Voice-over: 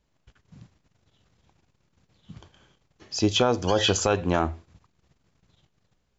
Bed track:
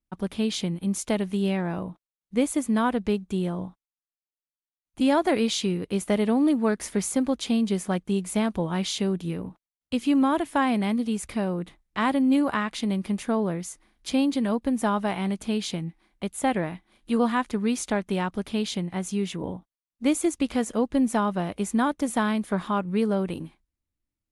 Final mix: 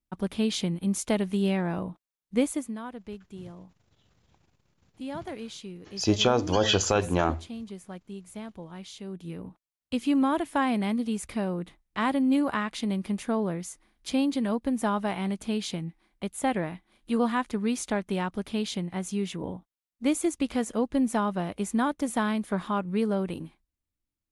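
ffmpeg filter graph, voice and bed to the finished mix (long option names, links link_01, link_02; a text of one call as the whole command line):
ffmpeg -i stem1.wav -i stem2.wav -filter_complex "[0:a]adelay=2850,volume=-1dB[link_01];[1:a]volume=12dB,afade=type=out:start_time=2.37:duration=0.4:silence=0.188365,afade=type=in:start_time=9.02:duration=0.7:silence=0.237137[link_02];[link_01][link_02]amix=inputs=2:normalize=0" out.wav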